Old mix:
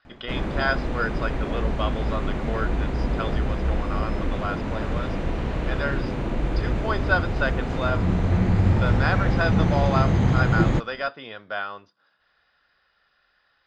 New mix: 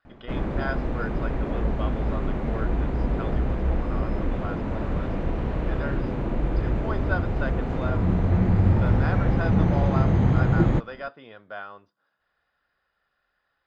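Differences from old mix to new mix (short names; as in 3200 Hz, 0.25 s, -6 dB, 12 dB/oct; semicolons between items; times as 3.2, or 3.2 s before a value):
speech -5.0 dB; master: add high shelf 2400 Hz -11.5 dB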